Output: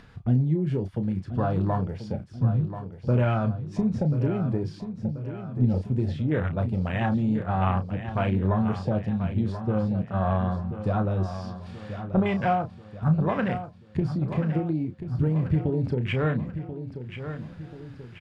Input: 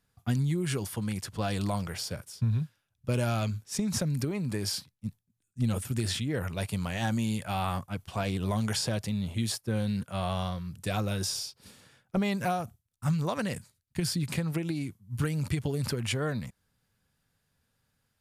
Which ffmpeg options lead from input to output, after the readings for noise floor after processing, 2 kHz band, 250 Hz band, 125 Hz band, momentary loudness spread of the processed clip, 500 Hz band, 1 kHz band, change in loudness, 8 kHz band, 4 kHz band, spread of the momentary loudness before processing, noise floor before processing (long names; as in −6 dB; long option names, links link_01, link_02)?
−46 dBFS, +1.5 dB, +6.0 dB, +6.0 dB, 11 LU, +6.0 dB, +5.5 dB, +4.5 dB, below −20 dB, −10.5 dB, 7 LU, −78 dBFS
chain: -filter_complex "[0:a]lowpass=3000,afwtdn=0.0141,acompressor=mode=upward:threshold=-31dB:ratio=2.5,asplit=2[link_01][link_02];[link_02]adelay=32,volume=-9dB[link_03];[link_01][link_03]amix=inputs=2:normalize=0,asplit=2[link_04][link_05];[link_05]aecho=0:1:1035|2070|3105|4140|5175:0.299|0.146|0.0717|0.0351|0.0172[link_06];[link_04][link_06]amix=inputs=2:normalize=0,volume=5dB"